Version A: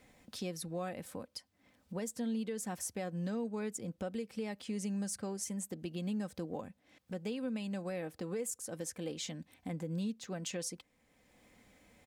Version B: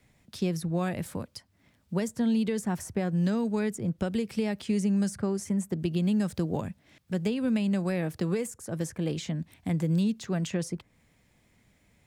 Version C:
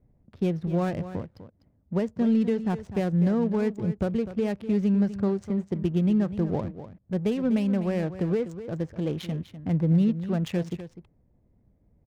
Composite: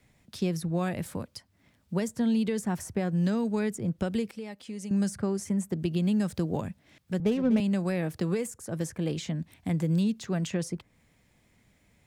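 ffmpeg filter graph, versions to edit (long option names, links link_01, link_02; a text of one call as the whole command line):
ffmpeg -i take0.wav -i take1.wav -i take2.wav -filter_complex "[1:a]asplit=3[link_01][link_02][link_03];[link_01]atrim=end=4.312[link_04];[0:a]atrim=start=4.308:end=4.912[link_05];[link_02]atrim=start=4.908:end=7.202[link_06];[2:a]atrim=start=7.198:end=7.602[link_07];[link_03]atrim=start=7.598[link_08];[link_04][link_05]acrossfade=duration=0.004:curve1=hsin:curve2=hsin[link_09];[link_09][link_06]acrossfade=duration=0.004:curve1=hsin:curve2=hsin[link_10];[link_10][link_07]acrossfade=duration=0.004:curve1=hsin:curve2=hsin[link_11];[link_11][link_08]acrossfade=duration=0.004:curve1=hsin:curve2=hsin" out.wav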